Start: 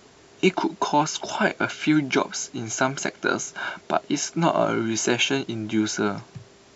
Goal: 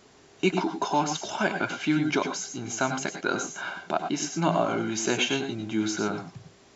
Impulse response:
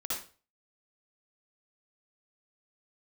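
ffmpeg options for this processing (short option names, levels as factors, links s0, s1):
-filter_complex "[0:a]asplit=2[s0][s1];[1:a]atrim=start_sample=2205,atrim=end_sample=3087,asetrate=25578,aresample=44100[s2];[s1][s2]afir=irnorm=-1:irlink=0,volume=0.376[s3];[s0][s3]amix=inputs=2:normalize=0,volume=0.473"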